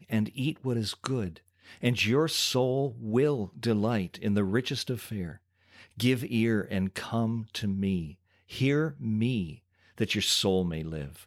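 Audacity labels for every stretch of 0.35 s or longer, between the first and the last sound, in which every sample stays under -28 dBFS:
1.280000	1.830000	silence
5.260000	6.000000	silence
8.010000	8.560000	silence
9.440000	10.000000	silence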